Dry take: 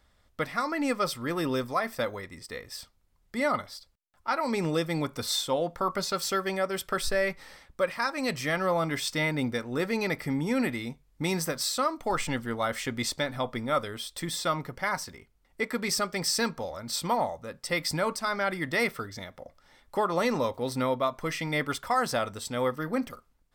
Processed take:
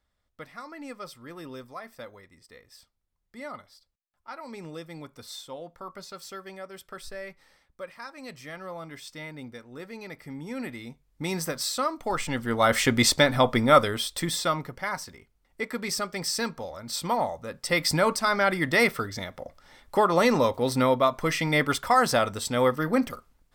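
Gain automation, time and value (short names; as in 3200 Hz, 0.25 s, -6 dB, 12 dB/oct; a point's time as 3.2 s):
10.06 s -12 dB
11.48 s 0 dB
12.29 s 0 dB
12.74 s +10 dB
13.79 s +10 dB
14.83 s -1.5 dB
16.76 s -1.5 dB
17.94 s +5.5 dB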